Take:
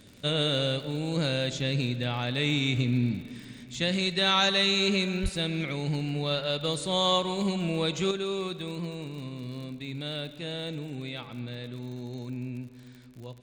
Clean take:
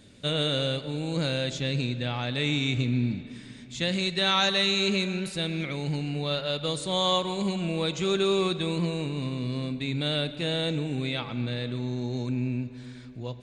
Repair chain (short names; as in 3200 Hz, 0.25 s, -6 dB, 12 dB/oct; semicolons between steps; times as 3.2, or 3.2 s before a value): de-click; 5.22–5.34 HPF 140 Hz 24 dB/oct; gain 0 dB, from 8.11 s +7 dB